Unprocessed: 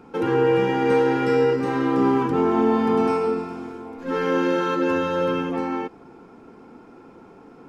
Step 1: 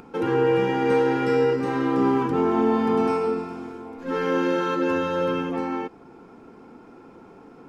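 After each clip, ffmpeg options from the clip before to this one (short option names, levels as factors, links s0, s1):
-af "acompressor=mode=upward:threshold=0.00891:ratio=2.5,volume=0.841"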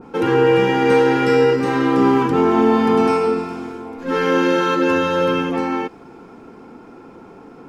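-af "adynamicequalizer=threshold=0.0112:dfrequency=1600:dqfactor=0.7:tfrequency=1600:tqfactor=0.7:attack=5:release=100:ratio=0.375:range=2:mode=boostabove:tftype=highshelf,volume=2"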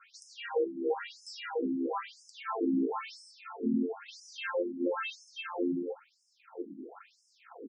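-filter_complex "[0:a]acrossover=split=350|1100[s0][s1][s2];[s1]adelay=40[s3];[s0]adelay=750[s4];[s4][s3][s2]amix=inputs=3:normalize=0,acompressor=threshold=0.0355:ratio=3,afftfilt=real='re*between(b*sr/1024,240*pow(7100/240,0.5+0.5*sin(2*PI*1*pts/sr))/1.41,240*pow(7100/240,0.5+0.5*sin(2*PI*1*pts/sr))*1.41)':imag='im*between(b*sr/1024,240*pow(7100/240,0.5+0.5*sin(2*PI*1*pts/sr))/1.41,240*pow(7100/240,0.5+0.5*sin(2*PI*1*pts/sr))*1.41)':win_size=1024:overlap=0.75,volume=1.26"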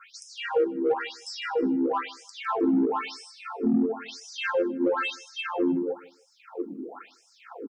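-filter_complex "[0:a]asplit=2[s0][s1];[s1]asoftclip=type=tanh:threshold=0.0316,volume=0.596[s2];[s0][s2]amix=inputs=2:normalize=0,aecho=1:1:155|310:0.0891|0.0232,volume=1.58"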